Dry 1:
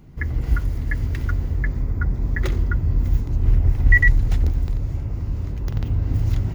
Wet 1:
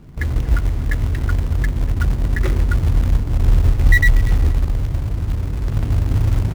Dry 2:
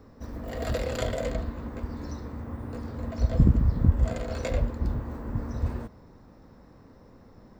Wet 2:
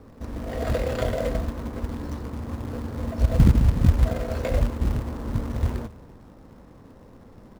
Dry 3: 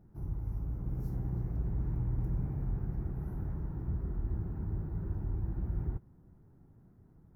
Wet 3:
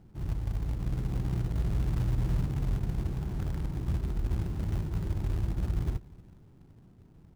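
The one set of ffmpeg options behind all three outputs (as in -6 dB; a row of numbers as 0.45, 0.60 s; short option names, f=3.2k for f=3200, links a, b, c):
-filter_complex "[0:a]aemphasis=mode=reproduction:type=75fm,aecho=1:1:238|476:0.0794|0.0199,asplit=2[a][b];[b]acrusher=bits=2:mode=log:mix=0:aa=0.000001,volume=-4dB[c];[a][c]amix=inputs=2:normalize=0,aeval=exprs='1.33*(cos(1*acos(clip(val(0)/1.33,-1,1)))-cos(1*PI/2))+0.0944*(cos(5*acos(clip(val(0)/1.33,-1,1)))-cos(5*PI/2))':c=same,volume=-3.5dB"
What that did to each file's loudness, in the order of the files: +3.0, +4.0, +4.5 LU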